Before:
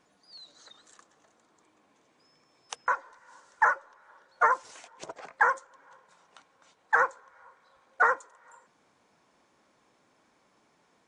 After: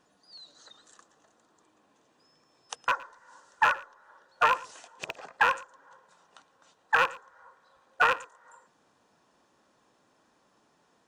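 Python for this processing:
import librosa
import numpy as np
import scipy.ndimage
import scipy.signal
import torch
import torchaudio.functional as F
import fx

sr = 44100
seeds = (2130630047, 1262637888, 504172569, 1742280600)

p1 = fx.rattle_buzz(x, sr, strikes_db=-47.0, level_db=-15.0)
p2 = fx.notch(p1, sr, hz=2200.0, q=6.2)
y = p2 + fx.echo_single(p2, sr, ms=114, db=-20.5, dry=0)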